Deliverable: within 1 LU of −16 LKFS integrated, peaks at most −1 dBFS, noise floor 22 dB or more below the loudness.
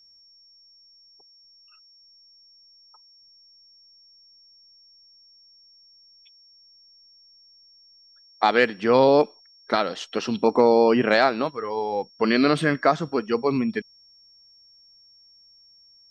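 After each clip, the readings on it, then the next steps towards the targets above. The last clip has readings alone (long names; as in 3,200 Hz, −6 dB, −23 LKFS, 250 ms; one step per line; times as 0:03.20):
interfering tone 5,500 Hz; level of the tone −52 dBFS; integrated loudness −21.5 LKFS; sample peak −4.0 dBFS; target loudness −16.0 LKFS
→ notch filter 5,500 Hz, Q 30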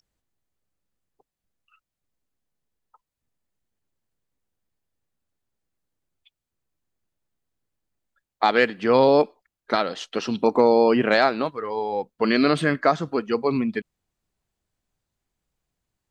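interfering tone none found; integrated loudness −21.5 LKFS; sample peak −4.0 dBFS; target loudness −16.0 LKFS
→ level +5.5 dB
brickwall limiter −1 dBFS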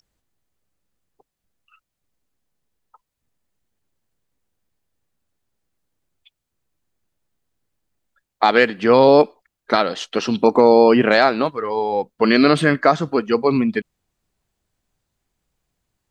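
integrated loudness −16.5 LKFS; sample peak −1.0 dBFS; background noise floor −81 dBFS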